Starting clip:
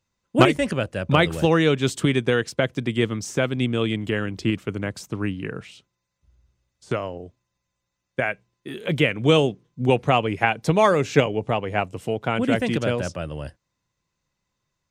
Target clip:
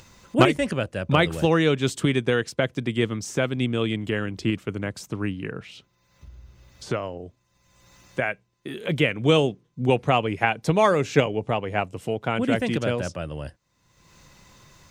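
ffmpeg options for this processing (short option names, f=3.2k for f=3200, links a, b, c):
-filter_complex "[0:a]asettb=1/sr,asplit=3[a][b][c];[a]atrim=end=5.514[d];[b]atrim=start=5.51:end=7.04,asetpts=PTS-STARTPTS,afade=t=in:d=0.004:c=qsin,afade=t=out:st=1.526:d=0.004:c=qsin,equalizer=f=8.4k:w=1.4:g=-7.5[e];[c]atrim=start=7.036[f];[d][e]acrossfade=d=0.004:c1=hsin:c2=qsin[g];[g][f]acrossfade=d=0.004:c1=qsin:c2=hsin,acompressor=mode=upward:threshold=-28dB:ratio=2.5,volume=-1.5dB"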